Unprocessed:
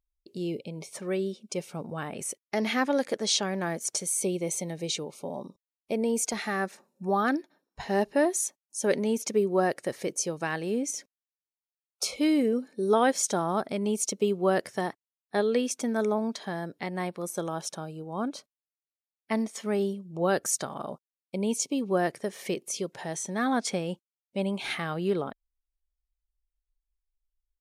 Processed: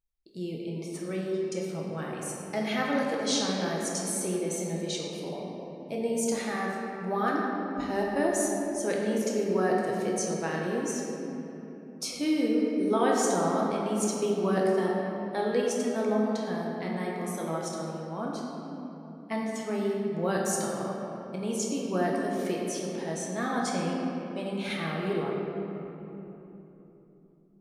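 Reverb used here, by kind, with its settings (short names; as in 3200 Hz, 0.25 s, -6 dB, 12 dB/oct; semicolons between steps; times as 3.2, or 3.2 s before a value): shoebox room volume 190 m³, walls hard, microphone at 0.67 m; gain -5.5 dB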